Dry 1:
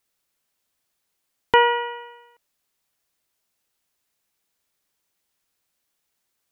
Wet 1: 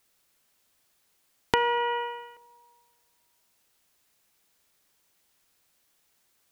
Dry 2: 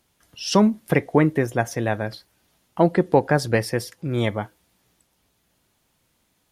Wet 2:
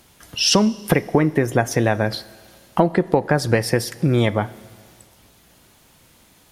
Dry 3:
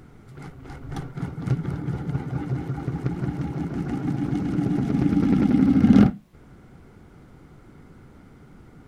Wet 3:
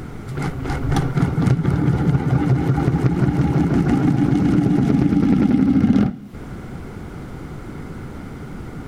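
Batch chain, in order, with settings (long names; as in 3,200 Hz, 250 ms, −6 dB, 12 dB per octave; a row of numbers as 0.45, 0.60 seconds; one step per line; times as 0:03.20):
downward compressor 6 to 1, threshold −29 dBFS
four-comb reverb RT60 1.8 s, combs from 26 ms, DRR 19 dB
normalise the peak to −2 dBFS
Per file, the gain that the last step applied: +6.5, +14.5, +16.0 decibels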